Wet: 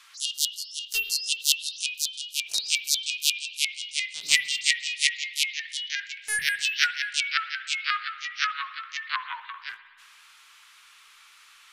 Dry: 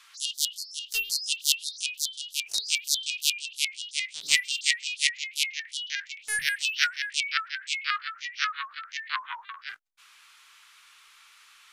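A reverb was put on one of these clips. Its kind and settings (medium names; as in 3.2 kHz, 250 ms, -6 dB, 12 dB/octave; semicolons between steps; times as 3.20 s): spring tank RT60 1.7 s, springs 57 ms, chirp 65 ms, DRR 11.5 dB; trim +1.5 dB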